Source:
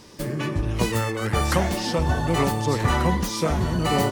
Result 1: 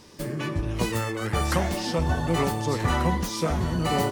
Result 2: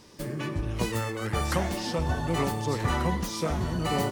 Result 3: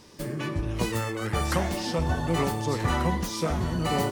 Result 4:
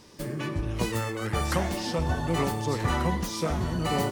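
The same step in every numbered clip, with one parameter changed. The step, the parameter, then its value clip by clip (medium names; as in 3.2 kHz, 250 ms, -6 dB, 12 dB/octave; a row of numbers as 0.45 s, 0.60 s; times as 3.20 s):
feedback comb, decay: 0.16 s, 2.2 s, 0.44 s, 0.95 s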